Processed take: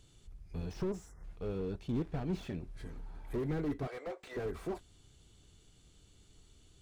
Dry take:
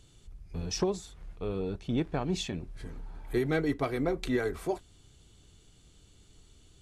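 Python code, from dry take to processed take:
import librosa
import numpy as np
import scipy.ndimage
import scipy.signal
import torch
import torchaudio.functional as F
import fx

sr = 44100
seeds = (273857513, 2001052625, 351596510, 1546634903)

y = fx.spec_erase(x, sr, start_s=0.89, length_s=0.35, low_hz=2100.0, high_hz=5000.0)
y = fx.ellip_bandpass(y, sr, low_hz=510.0, high_hz=8300.0, order=3, stop_db=40, at=(3.87, 4.37))
y = fx.slew_limit(y, sr, full_power_hz=13.0)
y = y * 10.0 ** (-3.5 / 20.0)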